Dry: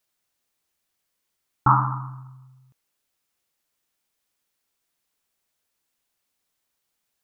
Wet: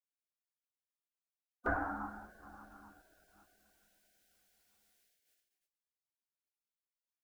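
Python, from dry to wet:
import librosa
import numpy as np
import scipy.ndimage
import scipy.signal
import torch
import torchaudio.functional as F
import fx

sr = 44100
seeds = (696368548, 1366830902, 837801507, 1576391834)

y = fx.rev_double_slope(x, sr, seeds[0], early_s=0.37, late_s=4.6, knee_db=-19, drr_db=2.0)
y = fx.spec_gate(y, sr, threshold_db=-20, keep='weak')
y = y * 10.0 ** (1.5 / 20.0)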